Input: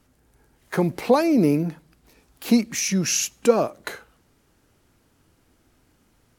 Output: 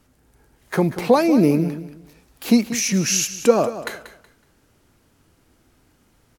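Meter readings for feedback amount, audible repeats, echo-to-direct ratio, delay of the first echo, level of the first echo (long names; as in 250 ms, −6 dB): 26%, 2, −12.5 dB, 186 ms, −13.0 dB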